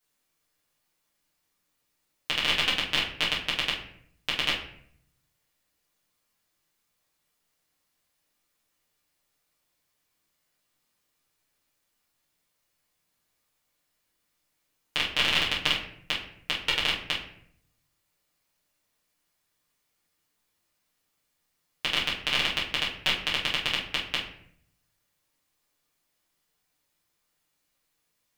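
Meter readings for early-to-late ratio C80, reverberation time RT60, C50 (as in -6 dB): 10.0 dB, 0.65 s, 5.5 dB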